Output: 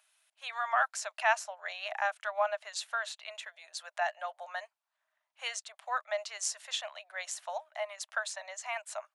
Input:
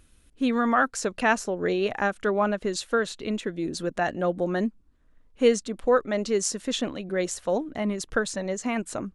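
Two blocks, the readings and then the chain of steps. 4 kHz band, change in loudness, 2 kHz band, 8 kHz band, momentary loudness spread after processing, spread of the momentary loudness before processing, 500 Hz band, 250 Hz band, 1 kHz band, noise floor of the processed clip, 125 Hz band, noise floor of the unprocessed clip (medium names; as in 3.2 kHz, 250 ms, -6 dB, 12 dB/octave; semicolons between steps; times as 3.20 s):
-4.0 dB, -9.0 dB, -4.5 dB, -5.5 dB, 12 LU, 7 LU, -13.5 dB, under -40 dB, -5.0 dB, under -85 dBFS, under -40 dB, -60 dBFS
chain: rippled Chebyshev high-pass 610 Hz, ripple 3 dB; trim -3 dB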